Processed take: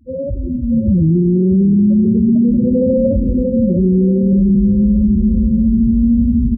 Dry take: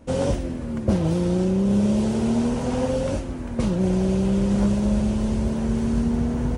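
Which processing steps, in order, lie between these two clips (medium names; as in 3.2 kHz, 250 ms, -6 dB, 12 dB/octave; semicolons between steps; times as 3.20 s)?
saturation -13 dBFS, distortion -23 dB; loudest bins only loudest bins 4; level rider gain up to 15 dB; 3.42–4.33 s: high-pass 210 Hz 6 dB/octave; feedback delay 632 ms, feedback 46%, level -9 dB; spring tank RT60 1.5 s, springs 43 ms, DRR 16.5 dB; loudness maximiser +8 dB; trim -5.5 dB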